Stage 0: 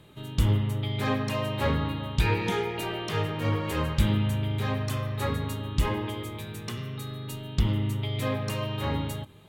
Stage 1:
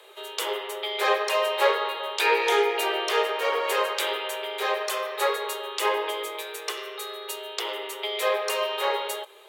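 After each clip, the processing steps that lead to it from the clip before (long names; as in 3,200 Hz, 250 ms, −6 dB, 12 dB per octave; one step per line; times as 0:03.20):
Butterworth high-pass 380 Hz 96 dB per octave
level +8 dB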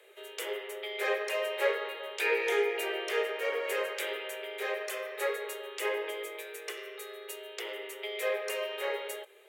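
octave-band graphic EQ 500/1,000/2,000/4,000 Hz +4/−11/+7/−8 dB
level −7 dB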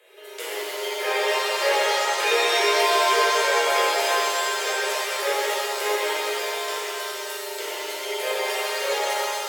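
reverb with rising layers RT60 2.5 s, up +7 semitones, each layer −2 dB, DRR −7.5 dB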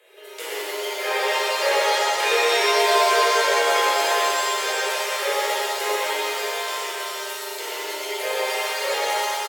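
single-tap delay 119 ms −5 dB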